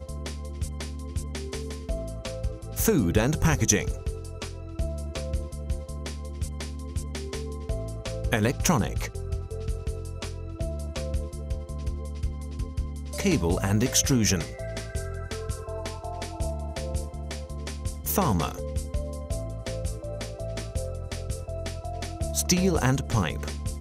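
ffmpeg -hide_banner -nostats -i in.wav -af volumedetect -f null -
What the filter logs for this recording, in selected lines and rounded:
mean_volume: -28.7 dB
max_volume: -5.5 dB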